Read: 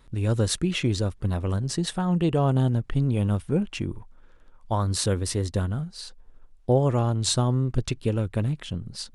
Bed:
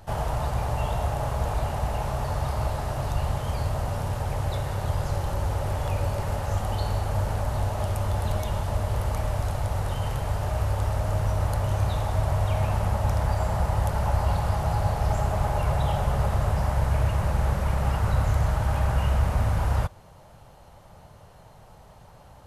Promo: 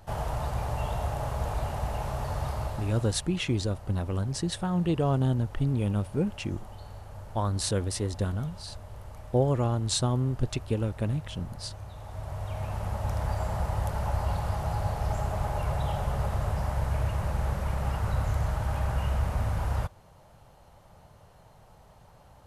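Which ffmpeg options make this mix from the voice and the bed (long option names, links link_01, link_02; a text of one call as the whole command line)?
ffmpeg -i stem1.wav -i stem2.wav -filter_complex "[0:a]adelay=2650,volume=-3.5dB[link_01];[1:a]volume=8.5dB,afade=type=out:start_time=2.48:duration=0.75:silence=0.211349,afade=type=in:start_time=11.94:duration=1.36:silence=0.237137[link_02];[link_01][link_02]amix=inputs=2:normalize=0" out.wav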